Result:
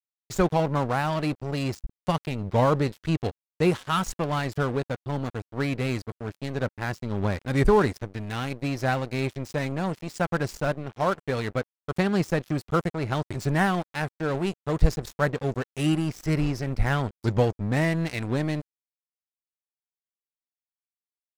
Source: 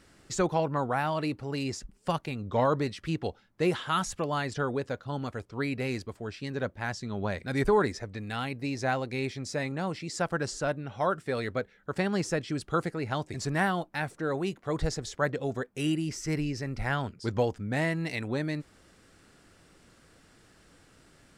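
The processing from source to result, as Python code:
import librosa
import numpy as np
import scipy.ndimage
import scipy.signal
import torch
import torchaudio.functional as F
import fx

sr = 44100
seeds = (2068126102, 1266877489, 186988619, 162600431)

y = fx.low_shelf(x, sr, hz=140.0, db=11.0)
y = np.sign(y) * np.maximum(np.abs(y) - 10.0 ** (-37.0 / 20.0), 0.0)
y = y * librosa.db_to_amplitude(4.0)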